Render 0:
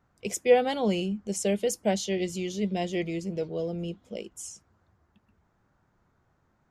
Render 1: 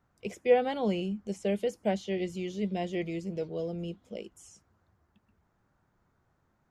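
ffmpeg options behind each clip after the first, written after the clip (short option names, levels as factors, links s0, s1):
-filter_complex "[0:a]acrossover=split=3000[s0][s1];[s1]acompressor=threshold=0.00355:ratio=4:attack=1:release=60[s2];[s0][s2]amix=inputs=2:normalize=0,volume=0.708"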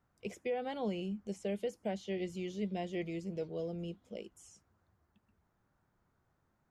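-af "alimiter=limit=0.0708:level=0:latency=1:release=252,volume=0.596"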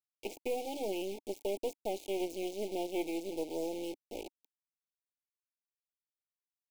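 -af "acrusher=bits=5:dc=4:mix=0:aa=0.000001,asuperstop=centerf=1400:order=20:qfactor=1.1,lowshelf=f=230:t=q:w=3:g=-8.5,volume=1.58"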